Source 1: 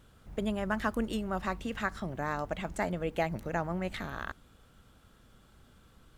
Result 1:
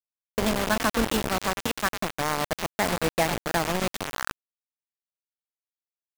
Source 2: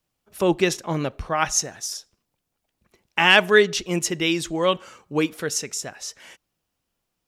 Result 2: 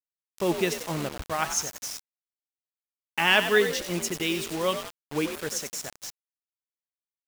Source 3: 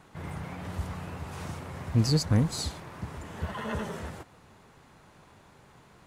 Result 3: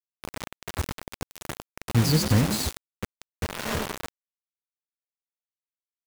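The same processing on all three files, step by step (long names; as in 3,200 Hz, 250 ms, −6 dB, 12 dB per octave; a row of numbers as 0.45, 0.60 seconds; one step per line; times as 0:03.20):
echo with shifted repeats 92 ms, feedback 43%, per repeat +53 Hz, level −10 dB
bit reduction 5 bits
loudness normalisation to −27 LKFS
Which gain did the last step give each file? +6.0, −6.0, +2.5 decibels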